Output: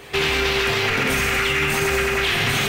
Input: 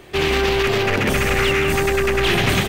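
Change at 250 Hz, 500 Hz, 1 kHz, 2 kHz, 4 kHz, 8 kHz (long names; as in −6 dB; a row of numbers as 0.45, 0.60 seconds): −5.0, −5.0, −2.0, +1.0, +1.0, +1.5 decibels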